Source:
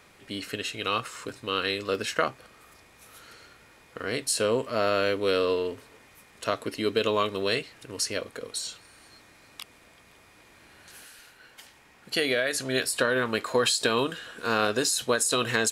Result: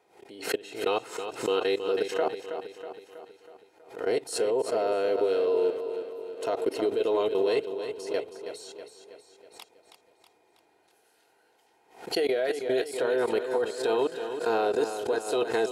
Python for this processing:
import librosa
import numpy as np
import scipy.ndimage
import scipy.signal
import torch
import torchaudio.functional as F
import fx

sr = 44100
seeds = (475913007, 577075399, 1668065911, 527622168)

y = fx.highpass(x, sr, hz=170.0, slope=6)
y = fx.band_shelf(y, sr, hz=550.0, db=13.5, octaves=1.7)
y = fx.level_steps(y, sr, step_db=21)
y = fx.notch_comb(y, sr, f0_hz=570.0)
y = fx.echo_feedback(y, sr, ms=322, feedback_pct=54, wet_db=-9)
y = fx.pre_swell(y, sr, db_per_s=130.0)
y = y * librosa.db_to_amplitude(-2.5)